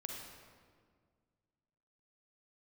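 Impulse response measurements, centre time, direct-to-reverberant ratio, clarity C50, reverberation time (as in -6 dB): 77 ms, 0.0 dB, 1.0 dB, 1.8 s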